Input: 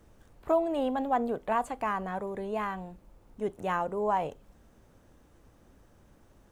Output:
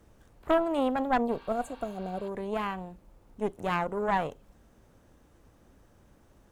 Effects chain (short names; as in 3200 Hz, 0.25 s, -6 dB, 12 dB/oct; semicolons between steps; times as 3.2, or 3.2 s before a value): spectral repair 1.34–2.26, 760–6200 Hz before; added harmonics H 4 -12 dB, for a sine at -14 dBFS